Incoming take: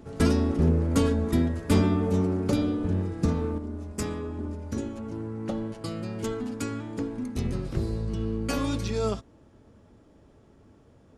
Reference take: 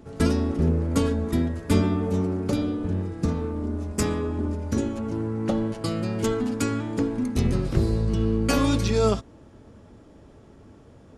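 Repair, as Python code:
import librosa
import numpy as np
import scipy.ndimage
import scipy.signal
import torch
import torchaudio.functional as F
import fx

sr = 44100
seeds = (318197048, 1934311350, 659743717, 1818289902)

y = fx.fix_declip(x, sr, threshold_db=-14.0)
y = fx.fix_level(y, sr, at_s=3.58, step_db=6.5)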